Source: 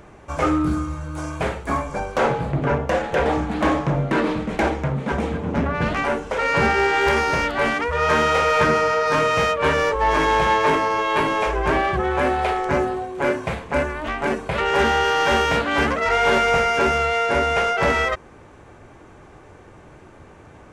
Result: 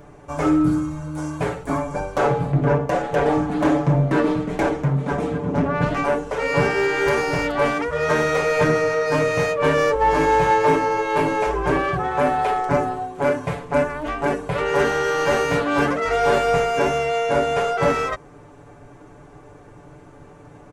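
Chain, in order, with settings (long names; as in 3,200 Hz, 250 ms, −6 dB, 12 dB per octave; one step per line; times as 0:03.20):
parametric band 2,700 Hz −6.5 dB 2.3 octaves
comb filter 6.9 ms, depth 73%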